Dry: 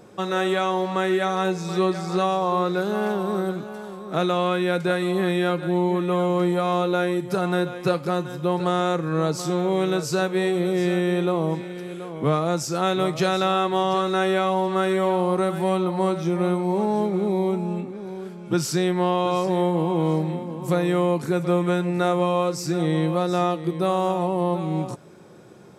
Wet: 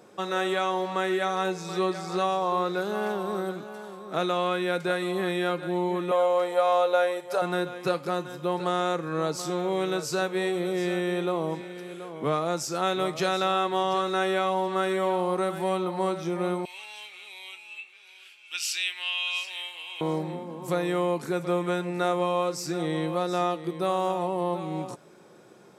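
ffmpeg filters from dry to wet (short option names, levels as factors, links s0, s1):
-filter_complex "[0:a]asettb=1/sr,asplit=3[s0][s1][s2];[s0]atrim=end=6.114[s3];[s1]atrim=start=6.11:end=7.42,asetpts=PTS-STARTPTS,afade=t=in:d=0.004:c=qsin,afade=t=out:st=1.306:d=0.004:c=qsin,lowshelf=f=380:t=q:w=3:g=-13[s4];[s2]atrim=start=7.416[s5];[s3][s4]acrossfade=d=0.004:c1=hsin:c2=qsin[s6];[s6][s5]acrossfade=d=0.004:c1=qsin:c2=hsin,asettb=1/sr,asplit=3[s7][s8][s9];[s7]atrim=end=16.654[s10];[s8]atrim=start=16.65:end=20.01,asetpts=PTS-STARTPTS,afade=t=in:d=0.004:c=qsin,afade=t=out:st=3.356:d=0.004:c=qsin,highpass=f=2700:t=q:w=7.4[s11];[s9]atrim=start=20.006[s12];[s10][s11]acrossfade=d=0.004:c1=hsin:c2=qsin[s13];[s13][s12]acrossfade=d=0.004:c1=qsin:c2=hsin,highpass=f=330:p=1,volume=0.75"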